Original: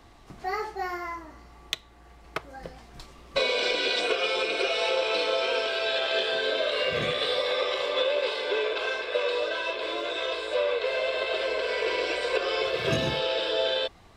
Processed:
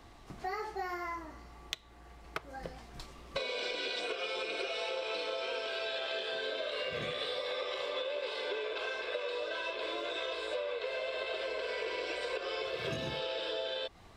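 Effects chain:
downward compressor, threshold −32 dBFS, peak gain reduction 11 dB
level −2 dB

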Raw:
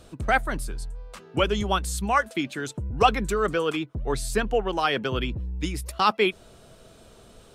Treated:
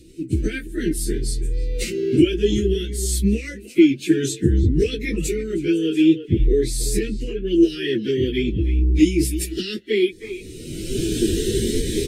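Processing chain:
camcorder AGC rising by 45 dB per second
elliptic band-stop filter 430–1,900 Hz, stop band 70 dB
far-end echo of a speakerphone 200 ms, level −11 dB
time stretch by phase vocoder 1.6×
parametric band 330 Hz +14 dB 0.39 octaves
phaser whose notches keep moving one way rising 0.57 Hz
level +2 dB

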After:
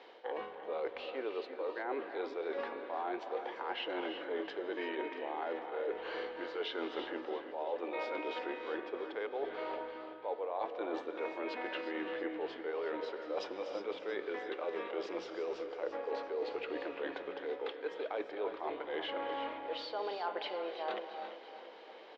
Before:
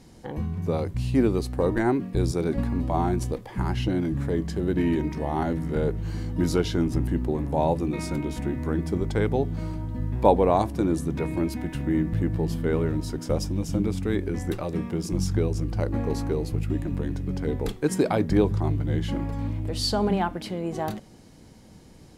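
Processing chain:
elliptic band-pass filter 460–3,400 Hz, stop band 50 dB
reversed playback
downward compressor 12 to 1, threshold −41 dBFS, peak gain reduction 27.5 dB
reversed playback
repeating echo 339 ms, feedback 59%, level −13.5 dB
reverb whose tail is shaped and stops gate 390 ms rising, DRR 7.5 dB
level +5.5 dB

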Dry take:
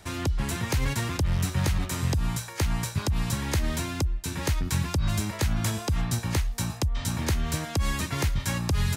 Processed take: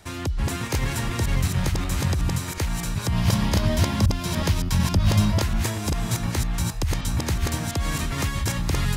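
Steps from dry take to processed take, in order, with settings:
delay that plays each chunk backwards 369 ms, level −1 dB
0:03.12–0:05.42: thirty-one-band graphic EQ 100 Hz +10 dB, 200 Hz +10 dB, 630 Hz +7 dB, 1,000 Hz +5 dB, 3,150 Hz +5 dB, 5,000 Hz +5 dB, 8,000 Hz −3 dB

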